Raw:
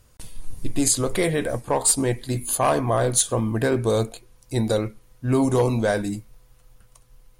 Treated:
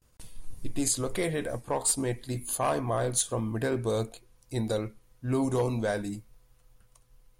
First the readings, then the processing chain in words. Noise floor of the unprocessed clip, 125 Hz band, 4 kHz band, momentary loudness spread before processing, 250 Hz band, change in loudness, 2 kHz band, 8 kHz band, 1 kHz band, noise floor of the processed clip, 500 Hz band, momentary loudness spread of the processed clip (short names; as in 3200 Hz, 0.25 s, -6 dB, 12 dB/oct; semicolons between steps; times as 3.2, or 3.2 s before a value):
-56 dBFS, -7.5 dB, -7.5 dB, 12 LU, -7.5 dB, -7.5 dB, -7.5 dB, -7.5 dB, -7.5 dB, -63 dBFS, -7.5 dB, 12 LU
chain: gate with hold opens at -46 dBFS; gain -7.5 dB